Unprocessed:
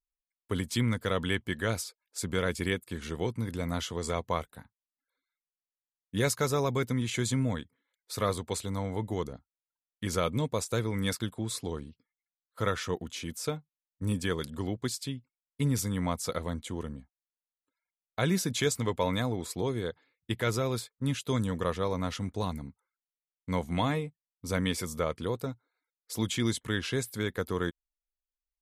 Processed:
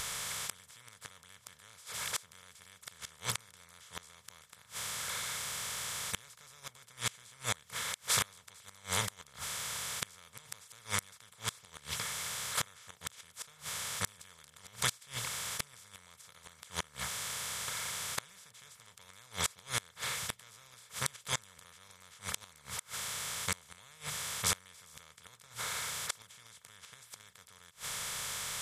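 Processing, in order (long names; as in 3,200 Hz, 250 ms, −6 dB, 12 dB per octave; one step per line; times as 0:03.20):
compressor on every frequency bin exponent 0.2
guitar amp tone stack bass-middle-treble 10-0-10
gate with flip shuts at −17 dBFS, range −28 dB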